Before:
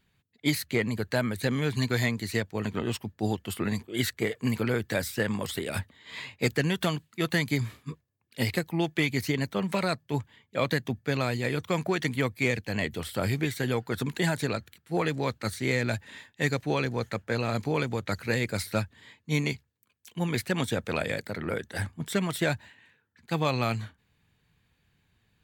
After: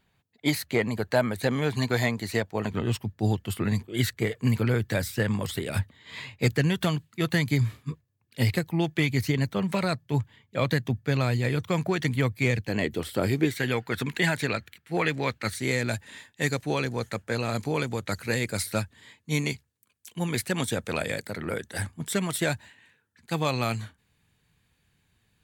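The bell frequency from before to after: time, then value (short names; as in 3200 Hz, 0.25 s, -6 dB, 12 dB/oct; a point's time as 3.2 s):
bell +7.5 dB 1.2 oct
740 Hz
from 2.7 s 110 Hz
from 12.69 s 350 Hz
from 13.55 s 2200 Hz
from 15.55 s 9500 Hz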